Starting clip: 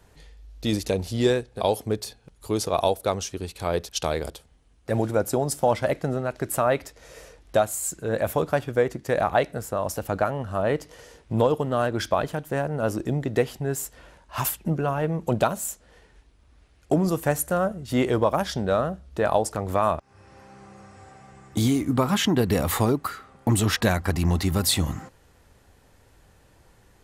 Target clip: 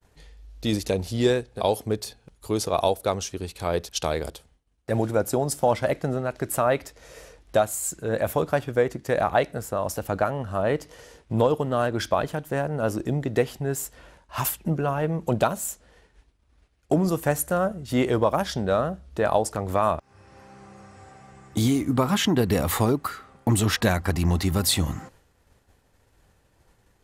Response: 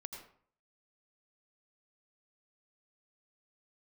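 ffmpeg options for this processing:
-af "agate=range=0.0224:threshold=0.00316:ratio=3:detection=peak"

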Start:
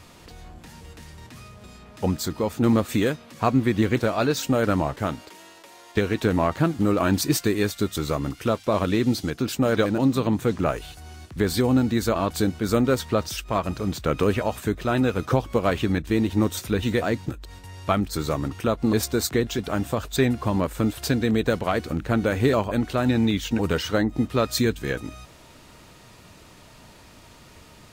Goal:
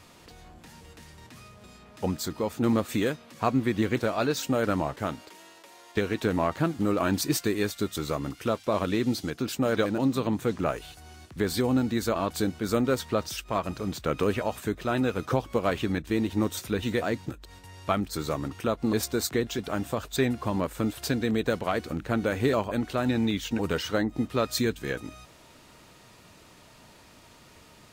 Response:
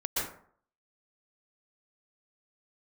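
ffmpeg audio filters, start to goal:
-af "lowshelf=f=110:g=-6.5,volume=0.668"

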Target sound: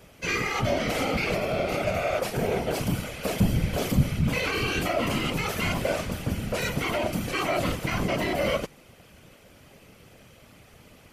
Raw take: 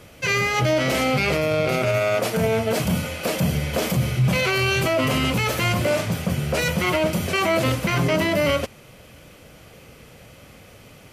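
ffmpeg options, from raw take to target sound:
-filter_complex "[0:a]asettb=1/sr,asplit=3[s0][s1][s2];[s0]atrim=end=3.194[s3];[s1]atrim=start=3.19:end=4.04,asetpts=PTS-STARTPTS,afade=t=in:d=0.004:c=qsin,afade=t=out:st=0.846:d=0.004:c=qsin,lowshelf=f=120:g=12[s4];[s2]atrim=start=4.036[s5];[s3][s4]acrossfade=d=0.004:c1=hsin:c2=qsin[s6];[s6][s5]acrossfade=d=0.004:c1=qsin:c2=hsin,afftfilt=real='hypot(re,im)*cos(2*PI*random(0))':imag='hypot(re,im)*sin(2*PI*random(1))':win_size=512:overlap=0.75"

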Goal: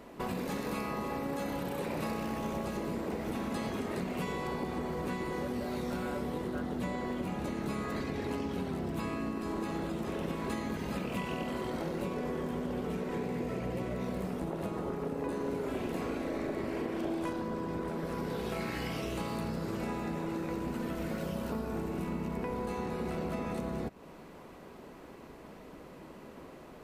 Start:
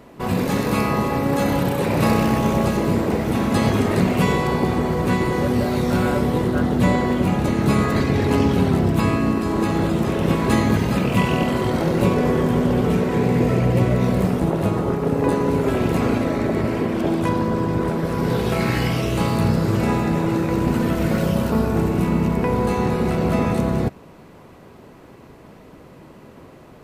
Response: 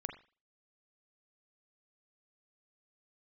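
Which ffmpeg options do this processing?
-filter_complex "[0:a]equalizer=f=110:t=o:w=0.74:g=-11,acompressor=threshold=0.0355:ratio=5,asettb=1/sr,asplit=3[s0][s1][s2];[s0]atrim=end=15.254[s3];[s1]atrim=start=15.25:end=17.42,asetpts=PTS-STARTPTS,afade=t=in:d=0.004:c=qsin,afade=t=out:st=2.166:d=0.004:c=qsin,asplit=2[s4][s5];[s5]adelay=39,volume=0.531[s6];[s4][s6]amix=inputs=2:normalize=0,atrim=end_sample=95697[s7];[s2]atrim=start=17.416[s8];[s3][s7]acrossfade=d=0.004:c1=hsin:c2=qsin[s9];[s9][s8]acrossfade=d=0.004:c1=qsin:c2=hsin,volume=0.596"

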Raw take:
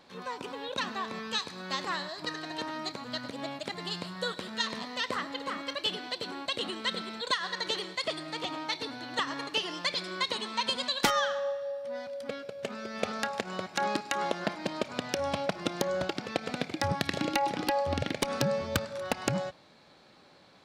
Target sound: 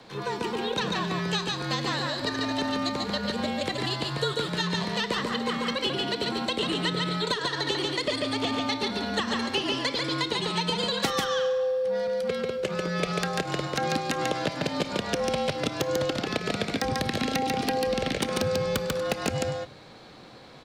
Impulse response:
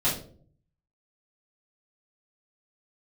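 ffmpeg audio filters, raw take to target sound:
-filter_complex "[0:a]afreqshift=-45,aecho=1:1:142:0.631,acrossover=split=83|540|2000[s0][s1][s2][s3];[s0]acompressor=threshold=0.00112:ratio=4[s4];[s1]acompressor=threshold=0.0141:ratio=4[s5];[s2]acompressor=threshold=0.00891:ratio=4[s6];[s3]acompressor=threshold=0.0158:ratio=4[s7];[s4][s5][s6][s7]amix=inputs=4:normalize=0,asplit=2[s8][s9];[1:a]atrim=start_sample=2205,asetrate=28665,aresample=44100[s10];[s9][s10]afir=irnorm=-1:irlink=0,volume=0.0224[s11];[s8][s11]amix=inputs=2:normalize=0,aeval=exprs='0.188*(cos(1*acos(clip(val(0)/0.188,-1,1)))-cos(1*PI/2))+0.0188*(cos(5*acos(clip(val(0)/0.188,-1,1)))-cos(5*PI/2))':c=same,equalizer=f=290:t=o:w=2.1:g=3,volume=1.5"

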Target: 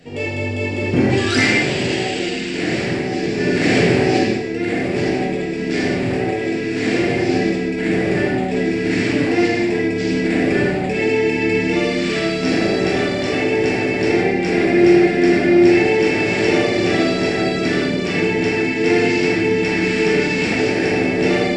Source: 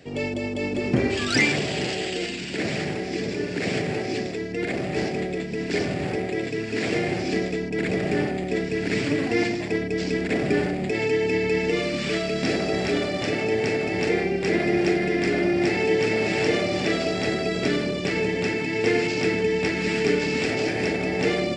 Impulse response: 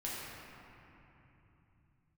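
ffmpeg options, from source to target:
-filter_complex "[0:a]asettb=1/sr,asplit=3[s0][s1][s2];[s0]atrim=end=3.374[s3];[s1]atrim=start=3.37:end=4.24,asetpts=PTS-STARTPTS,afade=t=in:d=0.004:c=qsin,afade=t=out:st=0.866:d=0.004:c=qsin,acontrast=26[s4];[s2]atrim=start=4.236[s5];[s3][s4]acrossfade=d=0.004:c1=hsin:c2=qsin[s6];[s6][s5]acrossfade=d=0.004:c1=qsin:c2=hsin[s7];[1:a]atrim=start_sample=2205,afade=t=out:st=0.23:d=0.01,atrim=end_sample=10584,asetrate=41895,aresample=44100[s8];[s7][s8]afir=irnorm=-1:irlink=0,volume=1.78"

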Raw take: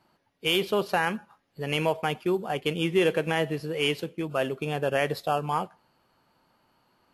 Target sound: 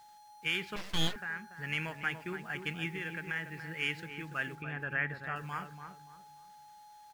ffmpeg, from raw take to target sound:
-filter_complex "[0:a]asettb=1/sr,asplit=3[s0][s1][s2];[s0]atrim=end=2.894[s3];[s1]atrim=start=2.89:end=3.67,asetpts=PTS-STARTPTS,afade=t=in:d=0.004:c=qsin,afade=t=out:st=0.776:d=0.004:c=qsin,acompressor=threshold=0.0282:ratio=2[s4];[s2]atrim=start=3.666[s5];[s3][s4]acrossfade=d=0.004:c1=hsin:c2=qsin[s6];[s6][s5]acrossfade=d=0.004:c1=qsin:c2=hsin,firequalizer=gain_entry='entry(110,0);entry(530,-18);entry(910,-15);entry(1600,0);entry(3000,-18);entry(6900,-7);entry(12000,-14)':delay=0.05:min_phase=1,aeval=exprs='val(0)+0.00224*sin(2*PI*840*n/s)':c=same,equalizer=f=2600:w=0.56:g=14.5,acrusher=bits=8:mix=0:aa=0.000001,asettb=1/sr,asplit=3[s7][s8][s9];[s7]atrim=end=4.554[s10];[s8]atrim=start=4.55:end=5.36,asetpts=PTS-STARTPTS,afade=t=in:d=0.004:c=qsin,afade=t=out:st=0.806:d=0.004:c=qsin,acrossover=split=2600[s11][s12];[s12]acompressor=threshold=0.00141:ratio=4:attack=1:release=60[s13];[s11][s13]amix=inputs=2:normalize=0[s14];[s9]atrim=start=5.356[s15];[s10][s14]acrossfade=d=0.004:c1=hsin:c2=qsin[s16];[s16][s15]acrossfade=d=0.004:c1=qsin:c2=hsin,asplit=2[s17][s18];[s18]adelay=287,lowpass=f=1300:p=1,volume=0.447,asplit=2[s19][s20];[s20]adelay=287,lowpass=f=1300:p=1,volume=0.34,asplit=2[s21][s22];[s22]adelay=287,lowpass=f=1300:p=1,volume=0.34,asplit=2[s23][s24];[s24]adelay=287,lowpass=f=1300:p=1,volume=0.34[s25];[s17][s19][s21][s23][s25]amix=inputs=5:normalize=0,asettb=1/sr,asplit=3[s26][s27][s28];[s26]atrim=end=0.764[s29];[s27]atrim=start=0.76:end=1.16,asetpts=PTS-STARTPTS,afade=t=in:d=0.004:c=qsin,afade=t=out:st=0.396:d=0.004:c=qsin,aeval=exprs='abs(val(0))':c=same[s30];[s28]atrim=start=1.156[s31];[s29][s30]acrossfade=d=0.004:c1=hsin:c2=qsin[s32];[s32][s31]acrossfade=d=0.004:c1=qsin:c2=hsin,volume=0.447"

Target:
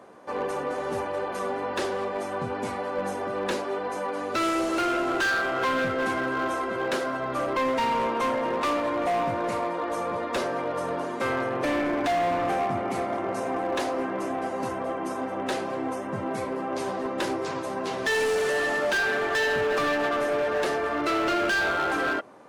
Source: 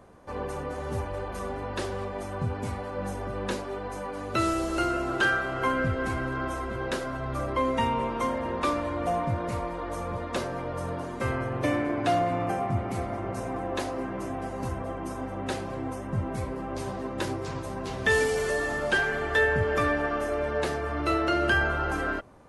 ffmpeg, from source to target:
-filter_complex "[0:a]highpass=270,highshelf=f=7100:g=-6,asplit=2[s0][s1];[s1]alimiter=limit=0.0944:level=0:latency=1,volume=0.944[s2];[s0][s2]amix=inputs=2:normalize=0,volume=12.6,asoftclip=hard,volume=0.0794"

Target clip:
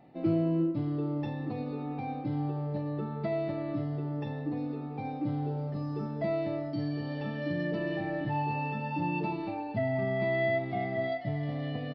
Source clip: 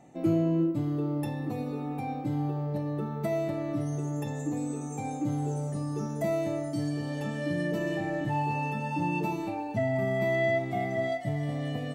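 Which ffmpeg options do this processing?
-af "aresample=11025,aresample=44100,volume=0.794"

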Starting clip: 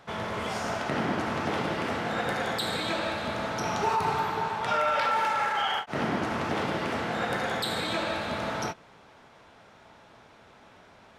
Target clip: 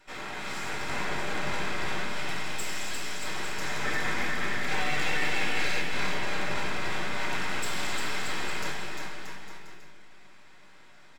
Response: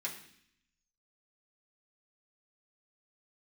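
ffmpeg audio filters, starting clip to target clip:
-filter_complex "[0:a]asettb=1/sr,asplit=3[s0][s1][s2];[s0]atrim=end=2.064[s3];[s1]atrim=start=2.06:end=3.22,asetpts=PTS-STARTPTS,afade=t=in:d=0.004:c=qsin,afade=t=out:st=1.156:d=0.004:c=qsin,highpass=f=1100:p=1[s4];[s2]atrim=start=3.216[s5];[s3][s4]acrossfade=d=0.004:c1=hsin:c2=qsin[s6];[s6][s5]acrossfade=d=0.004:c1=qsin:c2=hsin,aeval=exprs='abs(val(0))':c=same,aecho=1:1:350|630|854|1033|1177:0.631|0.398|0.251|0.158|0.1[s7];[1:a]atrim=start_sample=2205,asetrate=43218,aresample=44100[s8];[s7][s8]afir=irnorm=-1:irlink=0,volume=0.841"

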